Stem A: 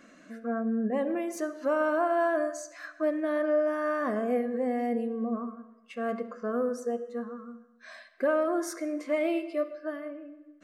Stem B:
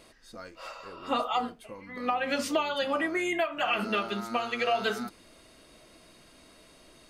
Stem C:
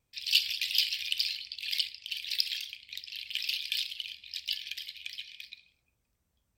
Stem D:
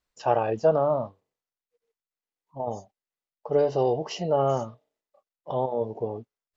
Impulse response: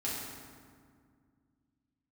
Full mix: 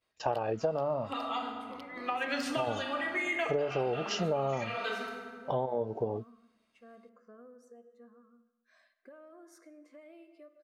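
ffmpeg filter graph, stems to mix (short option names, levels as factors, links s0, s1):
-filter_complex "[0:a]acompressor=threshold=0.0282:ratio=6,adelay=850,volume=0.106[s0];[1:a]agate=range=0.0224:threshold=0.00708:ratio=3:detection=peak,equalizer=f=1800:w=0.31:g=10,volume=0.2,asplit=2[s1][s2];[s2]volume=0.562[s3];[2:a]adynamicsmooth=sensitivity=1:basefreq=730,volume=0.178[s4];[3:a]agate=range=0.0562:threshold=0.00447:ratio=16:detection=peak,volume=1.12,asplit=2[s5][s6];[s6]apad=whole_len=312789[s7];[s1][s7]sidechaincompress=threshold=0.0224:ratio=8:attack=16:release=714[s8];[4:a]atrim=start_sample=2205[s9];[s3][s9]afir=irnorm=-1:irlink=0[s10];[s0][s8][s4][s5][s10]amix=inputs=5:normalize=0,acompressor=threshold=0.0447:ratio=10"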